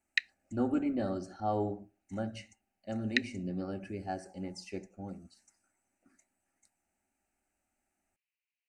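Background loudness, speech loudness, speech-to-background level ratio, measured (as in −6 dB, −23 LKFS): −34.5 LKFS, −37.0 LKFS, −2.5 dB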